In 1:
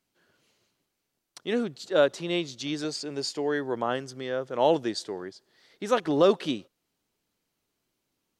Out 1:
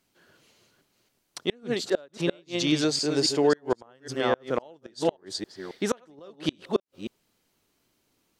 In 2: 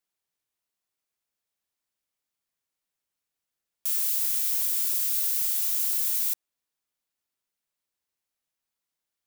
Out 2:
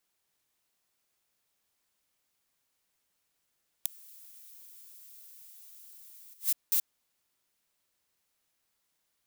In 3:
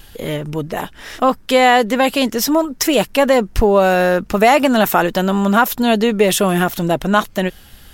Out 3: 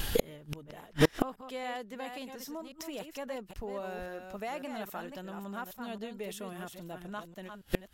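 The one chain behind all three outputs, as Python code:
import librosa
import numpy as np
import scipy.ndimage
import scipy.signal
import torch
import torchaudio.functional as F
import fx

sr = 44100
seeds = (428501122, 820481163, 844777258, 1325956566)

y = fx.reverse_delay(x, sr, ms=272, wet_db=-7.0)
y = fx.gate_flip(y, sr, shuts_db=-18.0, range_db=-34)
y = y * librosa.db_to_amplitude(7.0)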